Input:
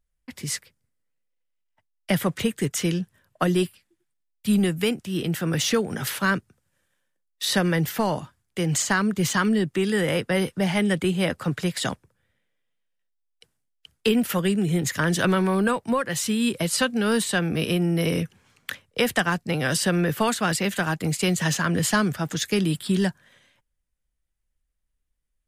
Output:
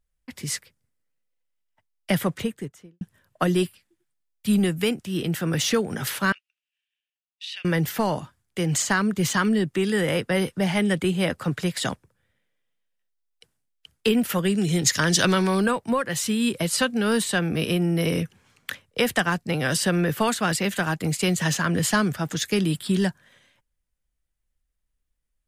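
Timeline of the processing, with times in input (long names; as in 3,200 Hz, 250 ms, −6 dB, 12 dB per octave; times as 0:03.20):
0:02.15–0:03.01: fade out and dull
0:06.32–0:07.65: four-pole ladder band-pass 2,900 Hz, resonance 75%
0:14.54–0:15.66: parametric band 5,200 Hz +12 dB 1.4 octaves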